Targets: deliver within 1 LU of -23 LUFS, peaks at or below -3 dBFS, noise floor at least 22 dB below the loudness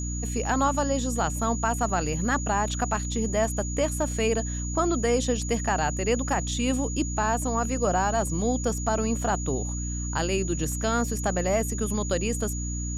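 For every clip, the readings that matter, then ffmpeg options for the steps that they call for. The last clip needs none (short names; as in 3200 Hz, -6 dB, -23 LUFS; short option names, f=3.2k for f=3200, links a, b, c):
hum 60 Hz; harmonics up to 300 Hz; hum level -29 dBFS; steady tone 6800 Hz; tone level -35 dBFS; loudness -26.5 LUFS; peak -12.5 dBFS; loudness target -23.0 LUFS
-> -af "bandreject=f=60:t=h:w=4,bandreject=f=120:t=h:w=4,bandreject=f=180:t=h:w=4,bandreject=f=240:t=h:w=4,bandreject=f=300:t=h:w=4"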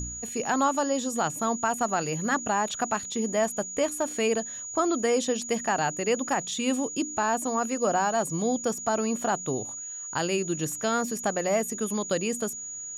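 hum none; steady tone 6800 Hz; tone level -35 dBFS
-> -af "bandreject=f=6.8k:w=30"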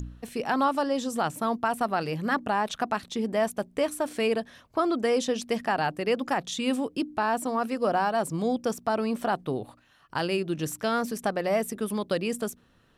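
steady tone none; loudness -28.0 LUFS; peak -14.5 dBFS; loudness target -23.0 LUFS
-> -af "volume=5dB"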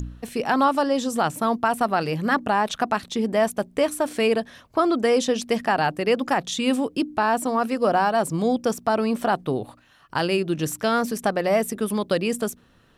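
loudness -23.0 LUFS; peak -9.5 dBFS; noise floor -56 dBFS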